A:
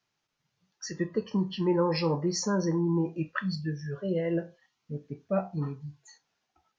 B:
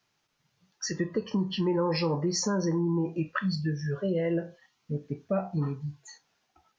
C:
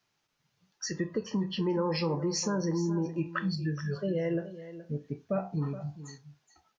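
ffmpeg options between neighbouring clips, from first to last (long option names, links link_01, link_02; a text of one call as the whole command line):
ffmpeg -i in.wav -filter_complex "[0:a]asplit=2[link_01][link_02];[link_02]alimiter=limit=-23.5dB:level=0:latency=1,volume=-1dB[link_03];[link_01][link_03]amix=inputs=2:normalize=0,acompressor=threshold=-27dB:ratio=2" out.wav
ffmpeg -i in.wav -af "aecho=1:1:422:0.2,volume=-2.5dB" out.wav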